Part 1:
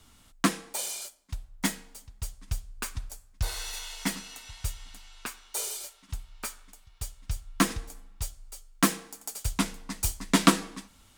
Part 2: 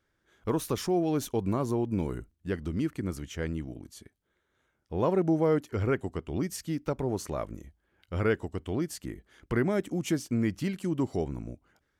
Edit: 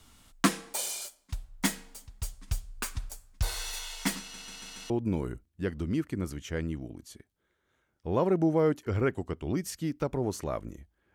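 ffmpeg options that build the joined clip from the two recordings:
ffmpeg -i cue0.wav -i cue1.wav -filter_complex "[0:a]apad=whole_dur=11.14,atrim=end=11.14,asplit=5[link_01][link_02][link_03][link_04][link_05];[link_01]atrim=end=4.342[link_06];[link_02]atrim=start=4.198:end=4.342[link_07];[link_03]atrim=start=4.198:end=4.342[link_08];[link_04]atrim=start=4.198:end=4.342[link_09];[link_05]atrim=start=4.198:end=4.342[link_10];[1:a]atrim=start=1.758:end=8[link_11];[link_06][link_07]acrossfade=duration=0.004:curve1=hsin:curve2=hsin[link_12];[link_12][link_08]acrossfade=duration=0.004:curve1=hsin:curve2=hsin[link_13];[link_13][link_09]acrossfade=duration=0.004:curve1=hsin:curve2=hsin[link_14];[link_14][link_10]acrossfade=duration=0.004:curve1=hsin:curve2=hsin[link_15];[link_15][link_11]acrossfade=duration=0.004:curve1=hsin:curve2=hsin" out.wav

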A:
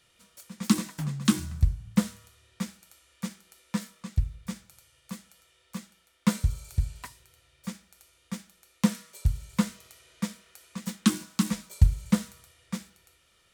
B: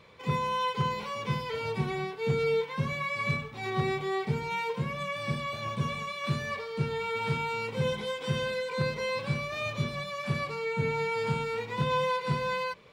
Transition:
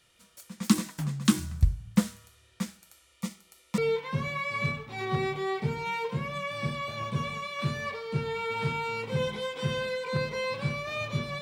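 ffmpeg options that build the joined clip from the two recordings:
ffmpeg -i cue0.wav -i cue1.wav -filter_complex "[0:a]asettb=1/sr,asplit=3[link_01][link_02][link_03];[link_01]atrim=end=3.064[link_04];[link_02]atrim=start=3.06:end=3.78,asetpts=PTS-STARTPTS,afade=type=in:duration=0.004:curve=qsin,afade=type=out:start_time=0.716:duration=0.004:curve=qsin,asuperstop=centerf=1600:order=8:qfactor=5[link_05];[link_03]atrim=start=3.776[link_06];[link_04][link_05]acrossfade=duration=0.004:curve1=hsin:curve2=qsin[link_07];[link_07][link_06]acrossfade=duration=0.004:curve1=qsin:curve2=hsin,apad=whole_dur=11.41,atrim=end=11.41,atrim=end=3.782[link_08];[1:a]atrim=start=2.428:end=10.06[link_09];[link_08][link_09]acrossfade=duration=0.004:curve1=hsin:curve2=hsin" out.wav

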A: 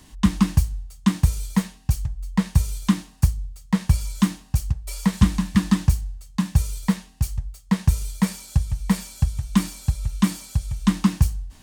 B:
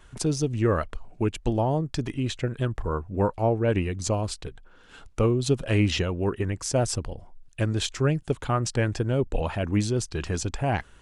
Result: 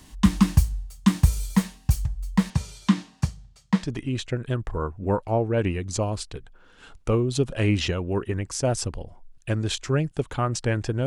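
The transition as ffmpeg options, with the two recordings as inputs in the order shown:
ffmpeg -i cue0.wav -i cue1.wav -filter_complex "[0:a]asettb=1/sr,asplit=3[link_01][link_02][link_03];[link_01]atrim=end=2.504[link_04];[link_02]atrim=start=2.5:end=3.91,asetpts=PTS-STARTPTS,afade=type=in:duration=0.004:curve=qsin,afade=type=out:start_time=1.406:duration=0.004:curve=qsin,highpass=130,lowpass=5600[link_05];[link_03]atrim=start=3.906[link_06];[link_04][link_05]acrossfade=duration=0.004:curve1=hsin:curve2=qsin[link_07];[link_07][link_06]acrossfade=duration=0.004:curve1=qsin:curve2=hsin,apad=whole_dur=11.06,atrim=end=11.06,atrim=end=3.91,asetpts=PTS-STARTPTS[link_08];[1:a]atrim=start=1.86:end=9.17,asetpts=PTS-STARTPTS[link_09];[link_08][link_09]acrossfade=duration=0.16:curve1=tri:curve2=tri" out.wav

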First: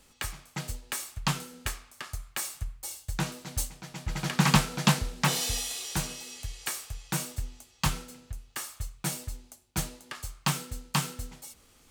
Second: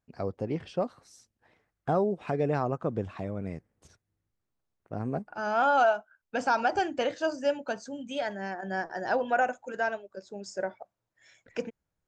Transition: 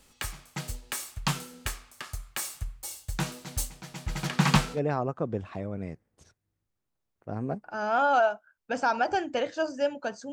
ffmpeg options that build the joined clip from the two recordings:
ffmpeg -i cue0.wav -i cue1.wav -filter_complex "[0:a]asettb=1/sr,asplit=3[link_01][link_02][link_03];[link_01]atrim=end=4.274[link_04];[link_02]atrim=start=4.27:end=4.8,asetpts=PTS-STARTPTS,afade=type=in:duration=0.004:curve=qsin,afade=type=out:start_time=0.526:duration=0.004:curve=qsin,highshelf=frequency=8100:gain=-10[link_05];[link_03]atrim=start=4.796[link_06];[link_04][link_05]acrossfade=duration=0.004:curve1=hsin:curve2=qsin[link_07];[link_07][link_06]acrossfade=duration=0.004:curve1=qsin:curve2=hsin,apad=whole_dur=10.32,atrim=end=10.32,atrim=end=4.8,asetpts=PTS-STARTPTS[link_08];[1:a]atrim=start=2.36:end=7.96,asetpts=PTS-STARTPTS[link_09];[link_08][link_09]acrossfade=duration=0.08:curve1=tri:curve2=tri" out.wav

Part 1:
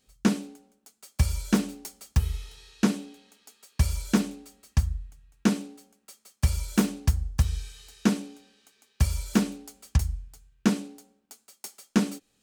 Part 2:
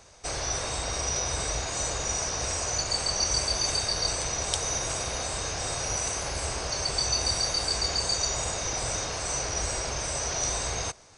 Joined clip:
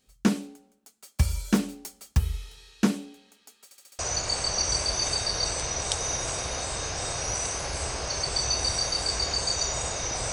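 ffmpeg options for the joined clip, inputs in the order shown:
ffmpeg -i cue0.wav -i cue1.wav -filter_complex "[0:a]apad=whole_dur=10.32,atrim=end=10.32,asplit=5[link_01][link_02][link_03][link_04][link_05];[link_01]atrim=end=3.712[link_06];[link_02]atrim=start=3.638:end=3.712[link_07];[link_03]atrim=start=3.638:end=3.712[link_08];[link_04]atrim=start=3.638:end=3.712[link_09];[link_05]atrim=start=3.638:end=3.712[link_10];[1:a]atrim=start=2.608:end=8.94[link_11];[link_06][link_07]acrossfade=duration=0.004:curve1=hsin:curve2=hsin[link_12];[link_12][link_08]acrossfade=duration=0.004:curve1=hsin:curve2=hsin[link_13];[link_13][link_09]acrossfade=duration=0.004:curve1=hsin:curve2=hsin[link_14];[link_14][link_10]acrossfade=duration=0.004:curve1=hsin:curve2=hsin[link_15];[link_15][link_11]acrossfade=duration=0.004:curve1=hsin:curve2=hsin" out.wav

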